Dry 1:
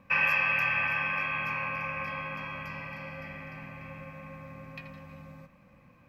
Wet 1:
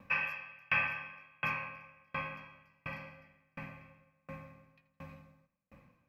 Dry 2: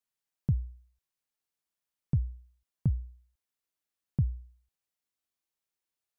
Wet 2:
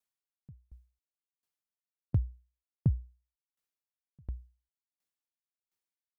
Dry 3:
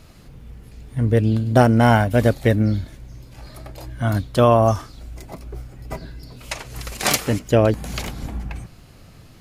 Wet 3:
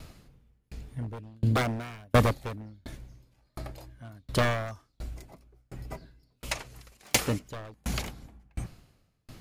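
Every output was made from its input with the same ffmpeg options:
-af "aeval=exprs='0.224*(abs(mod(val(0)/0.224+3,4)-2)-1)':c=same,aeval=exprs='val(0)*pow(10,-38*if(lt(mod(1.4*n/s,1),2*abs(1.4)/1000),1-mod(1.4*n/s,1)/(2*abs(1.4)/1000),(mod(1.4*n/s,1)-2*abs(1.4)/1000)/(1-2*abs(1.4)/1000))/20)':c=same,volume=1.26"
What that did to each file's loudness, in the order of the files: -8.0 LU, -1.5 LU, -12.0 LU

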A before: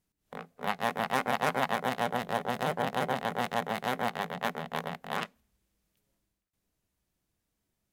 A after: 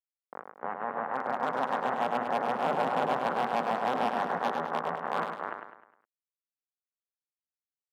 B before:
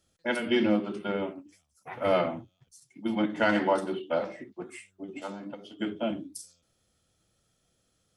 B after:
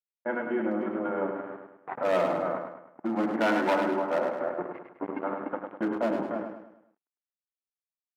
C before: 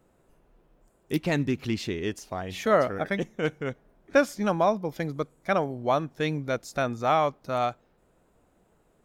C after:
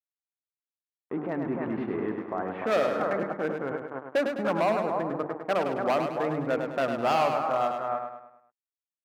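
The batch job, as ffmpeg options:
-filter_complex "[0:a]bandreject=f=50:t=h:w=6,bandreject=f=100:t=h:w=6,bandreject=f=150:t=h:w=6,bandreject=f=200:t=h:w=6,bandreject=f=250:t=h:w=6,bandreject=f=300:t=h:w=6,bandreject=f=350:t=h:w=6,bandreject=f=400:t=h:w=6,bandreject=f=450:t=h:w=6,asplit=2[s0][s1];[s1]aecho=0:1:294:0.316[s2];[s0][s2]amix=inputs=2:normalize=0,adynamicequalizer=threshold=0.0112:dfrequency=460:dqfactor=2.2:tfrequency=460:tqfactor=2.2:attack=5:release=100:ratio=0.375:range=1.5:mode=cutabove:tftype=bell,aeval=exprs='sgn(val(0))*max(abs(val(0))-0.00891,0)':c=same,dynaudnorm=f=110:g=31:m=6.31,lowpass=f=1500:w=0.5412,lowpass=f=1500:w=1.3066,asoftclip=type=hard:threshold=0.188,alimiter=level_in=1.12:limit=0.0631:level=0:latency=1:release=20,volume=0.891,highpass=240,asplit=2[s3][s4];[s4]aecho=0:1:103|206|309|412|515:0.501|0.221|0.097|0.0427|0.0188[s5];[s3][s5]amix=inputs=2:normalize=0,volume=1.68"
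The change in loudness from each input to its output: +1.5 LU, 0.0 LU, -1.0 LU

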